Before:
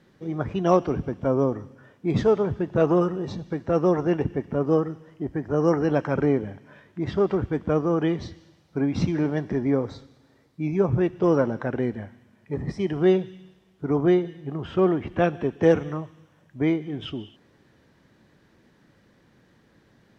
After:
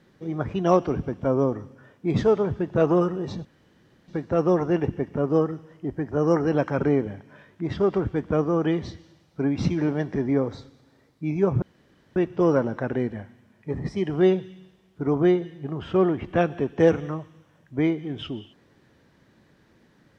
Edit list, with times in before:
0:03.45: splice in room tone 0.63 s
0:10.99: splice in room tone 0.54 s

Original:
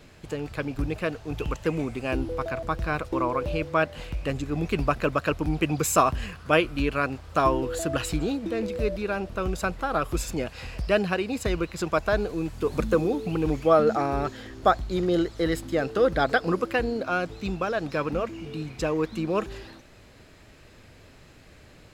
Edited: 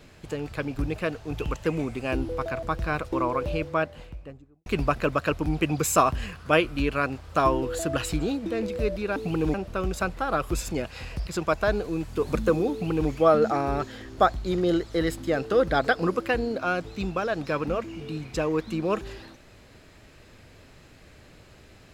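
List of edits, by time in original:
0:03.46–0:04.66: fade out and dull
0:10.89–0:11.72: remove
0:13.17–0:13.55: duplicate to 0:09.16

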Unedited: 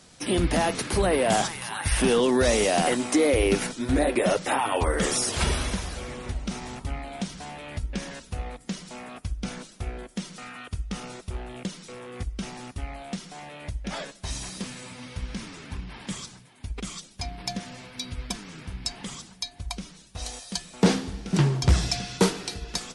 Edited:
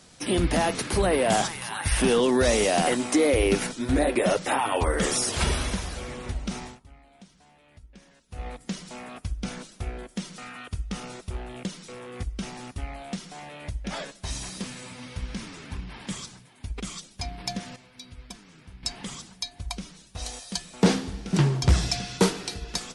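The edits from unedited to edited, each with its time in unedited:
0:06.61–0:08.46: duck −19 dB, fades 0.18 s
0:17.76–0:18.83: clip gain −10 dB

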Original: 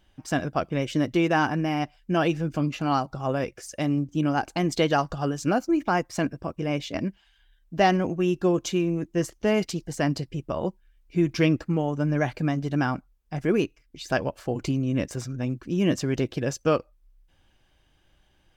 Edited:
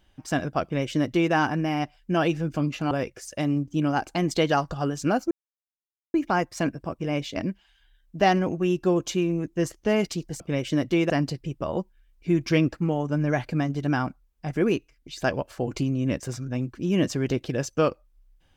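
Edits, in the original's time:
0:00.63–0:01.33: duplicate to 0:09.98
0:02.91–0:03.32: remove
0:05.72: splice in silence 0.83 s

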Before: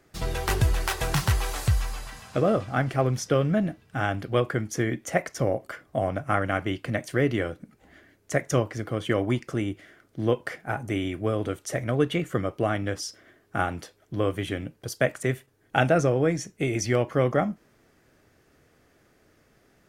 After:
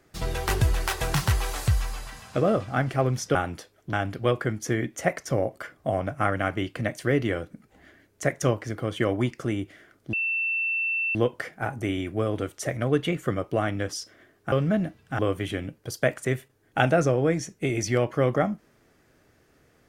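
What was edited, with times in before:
0:03.35–0:04.02: swap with 0:13.59–0:14.17
0:10.22: insert tone 2,680 Hz −23.5 dBFS 1.02 s

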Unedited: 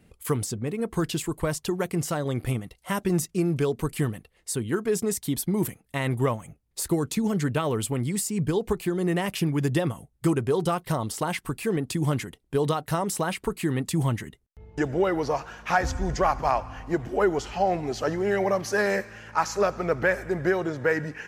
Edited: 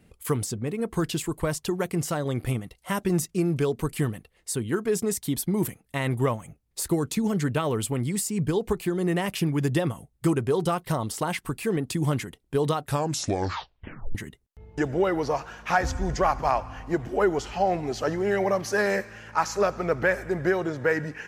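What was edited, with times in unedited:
0:12.80: tape stop 1.35 s

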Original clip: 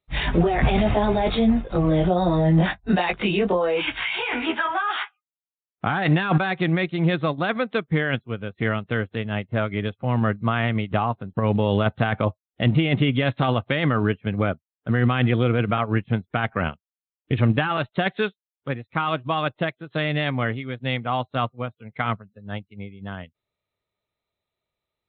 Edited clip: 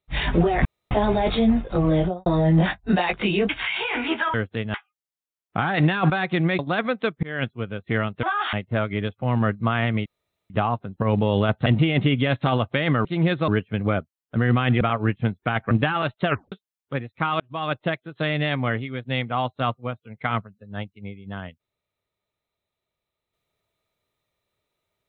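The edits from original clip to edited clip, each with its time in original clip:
0:00.65–0:00.91: fill with room tone
0:01.96–0:02.26: fade out and dull
0:03.49–0:03.87: remove
0:04.72–0:05.02: swap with 0:08.94–0:09.34
0:06.87–0:07.30: move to 0:14.01
0:07.94–0:08.24: fade in equal-power
0:10.87: splice in room tone 0.44 s
0:12.03–0:12.62: remove
0:15.34–0:15.69: remove
0:16.59–0:17.46: remove
0:18.01: tape stop 0.26 s
0:19.15–0:19.49: fade in

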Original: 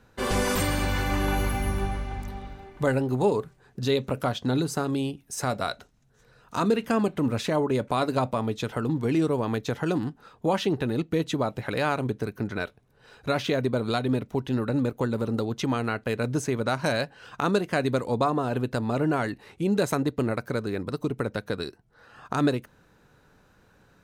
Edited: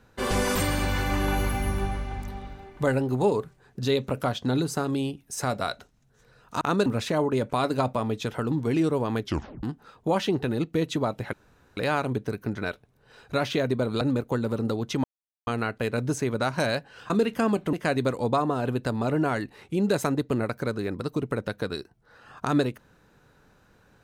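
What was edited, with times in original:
0:06.61–0:07.24: swap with 0:17.36–0:17.61
0:09.60: tape stop 0.41 s
0:11.71: splice in room tone 0.44 s
0:13.95–0:14.70: remove
0:15.73: splice in silence 0.43 s

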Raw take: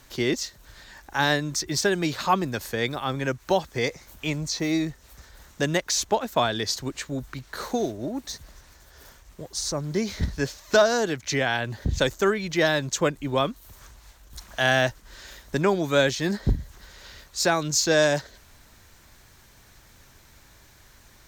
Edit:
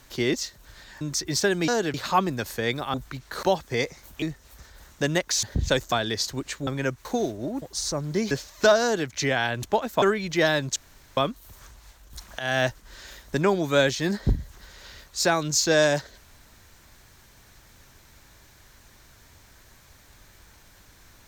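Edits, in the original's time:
0:01.01–0:01.42: remove
0:03.09–0:03.47: swap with 0:07.16–0:07.65
0:04.26–0:04.81: remove
0:06.02–0:06.41: swap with 0:11.73–0:12.22
0:08.22–0:09.42: remove
0:10.11–0:10.41: remove
0:10.92–0:11.18: duplicate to 0:02.09
0:12.96–0:13.37: fill with room tone
0:14.59–0:14.87: fade in, from −13.5 dB

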